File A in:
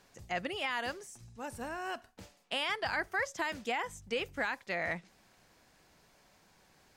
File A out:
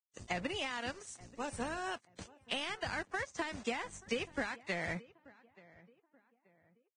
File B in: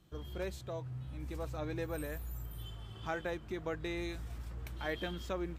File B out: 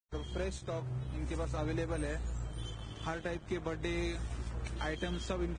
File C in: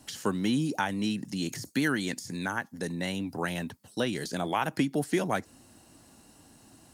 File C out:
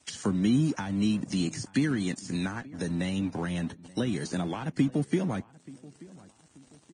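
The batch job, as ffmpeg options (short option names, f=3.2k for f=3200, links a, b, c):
-filter_complex "[0:a]acrossover=split=280[a][b];[b]acompressor=threshold=-41dB:ratio=6[c];[a][c]amix=inputs=2:normalize=0,aeval=exprs='sgn(val(0))*max(abs(val(0))-0.00237,0)':c=same,asplit=2[d][e];[e]adelay=881,lowpass=f=1.8k:p=1,volume=-21dB,asplit=2[f][g];[g]adelay=881,lowpass=f=1.8k:p=1,volume=0.39,asplit=2[h][i];[i]adelay=881,lowpass=f=1.8k:p=1,volume=0.39[j];[f][h][j]amix=inputs=3:normalize=0[k];[d][k]amix=inputs=2:normalize=0,volume=6.5dB" -ar 22050 -c:a libvorbis -b:a 16k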